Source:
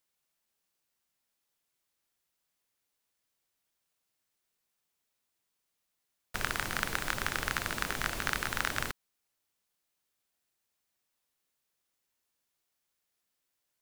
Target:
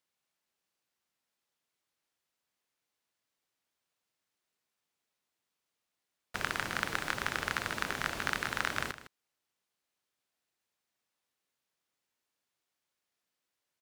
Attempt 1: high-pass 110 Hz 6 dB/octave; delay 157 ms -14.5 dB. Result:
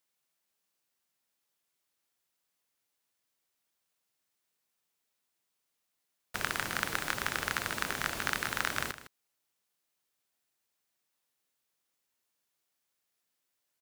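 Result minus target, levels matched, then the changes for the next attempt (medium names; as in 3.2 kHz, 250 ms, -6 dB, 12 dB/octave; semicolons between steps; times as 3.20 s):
8 kHz band +3.5 dB
add after high-pass: treble shelf 8 kHz -10 dB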